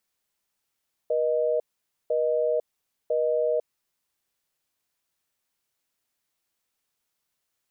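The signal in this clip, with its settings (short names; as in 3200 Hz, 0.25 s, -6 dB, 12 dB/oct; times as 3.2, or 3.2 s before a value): call progress tone busy tone, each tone -24 dBFS 2.98 s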